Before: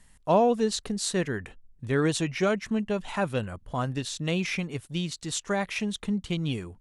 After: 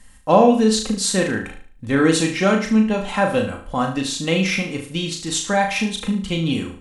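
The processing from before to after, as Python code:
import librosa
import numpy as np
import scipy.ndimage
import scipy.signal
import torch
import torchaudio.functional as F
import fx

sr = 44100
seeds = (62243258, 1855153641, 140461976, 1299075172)

p1 = x + 0.54 * np.pad(x, (int(3.8 * sr / 1000.0), 0))[:len(x)]
p2 = p1 + fx.room_flutter(p1, sr, wall_m=6.3, rt60_s=0.45, dry=0)
y = p2 * librosa.db_to_amplitude(6.5)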